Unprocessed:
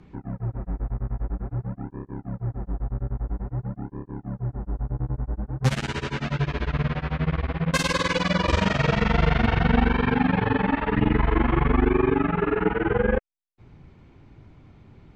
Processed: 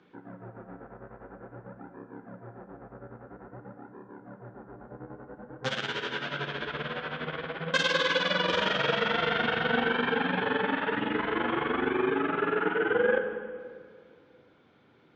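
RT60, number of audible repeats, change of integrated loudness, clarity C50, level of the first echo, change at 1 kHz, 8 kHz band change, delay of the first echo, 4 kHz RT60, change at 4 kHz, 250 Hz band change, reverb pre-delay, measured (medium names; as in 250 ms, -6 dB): 2.1 s, no echo, -3.0 dB, 7.5 dB, no echo, -3.5 dB, -9.0 dB, no echo, 1.4 s, +2.0 dB, -9.5 dB, 21 ms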